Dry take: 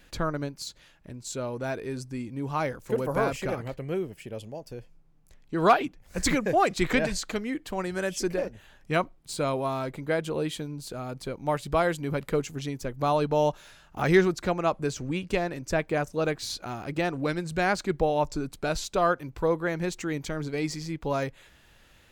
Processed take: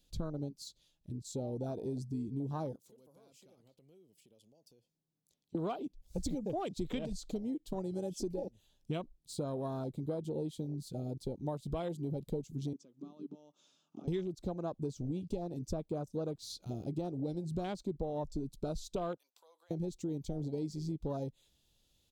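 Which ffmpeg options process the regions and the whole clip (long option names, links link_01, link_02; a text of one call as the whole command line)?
ffmpeg -i in.wav -filter_complex "[0:a]asettb=1/sr,asplit=3[link_01][link_02][link_03];[link_01]atrim=end=2.764[link_04];[link_02]atrim=start=2.76:end=5.55,asetpts=PTS-STARTPTS,afade=type=in:duration=0.004:curve=qsin,afade=type=out:start_time=2.786:duration=0.004:curve=qsin,highpass=170,acompressor=threshold=-47dB:ratio=3:attack=3.2:release=140:knee=1:detection=peak[link_05];[link_03]atrim=start=5.546[link_06];[link_04][link_05]acrossfade=duration=0.004:curve1=hsin:curve2=qsin[link_07];[link_07][link_06]acrossfade=duration=0.004:curve1=qsin:curve2=hsin,asettb=1/sr,asplit=3[link_08][link_09][link_10];[link_08]atrim=end=12.734[link_11];[link_09]atrim=start=12.73:end=14.08,asetpts=PTS-STARTPTS,afade=type=in:duration=0.004:curve=qsin,afade=type=out:start_time=1.346:duration=0.004:curve=qsin,acompressor=threshold=-39dB:ratio=8:attack=3.2:release=140:knee=1:detection=peak,highpass=frequency=170:width=0.5412,highpass=frequency=170:width=1.3066,equalizer=frequency=280:width_type=q:width=4:gain=7,equalizer=frequency=1200:width_type=q:width=4:gain=9,equalizer=frequency=1900:width_type=q:width=4:gain=-4,equalizer=frequency=4200:width_type=q:width=4:gain=-9,lowpass=frequency=6900:width=0.5412,lowpass=frequency=6900:width=1.3066[link_12];[link_10]atrim=start=14.076[link_13];[link_11][link_12]acrossfade=duration=0.004:curve1=hsin:curve2=qsin[link_14];[link_14][link_13]acrossfade=duration=0.004:curve1=qsin:curve2=hsin,asettb=1/sr,asplit=3[link_15][link_16][link_17];[link_15]atrim=end=19.174[link_18];[link_16]atrim=start=19.17:end=19.71,asetpts=PTS-STARTPTS,afade=type=in:duration=0.004:curve=qsin,afade=type=out:start_time=0.536:duration=0.004:curve=qsin,highpass=frequency=690:width=0.5412,highpass=frequency=690:width=1.3066,acompressor=threshold=-38dB:ratio=10:attack=3.2:release=140:knee=1:detection=peak[link_19];[link_17]atrim=start=19.706[link_20];[link_18][link_19]acrossfade=duration=0.004:curve1=hsin:curve2=qsin[link_21];[link_21][link_20]acrossfade=duration=0.004:curve1=qsin:curve2=hsin,afwtdn=0.0355,firequalizer=gain_entry='entry(240,0);entry(1700,-18);entry(3500,5)':delay=0.05:min_phase=1,acompressor=threshold=-35dB:ratio=6,volume=1dB" out.wav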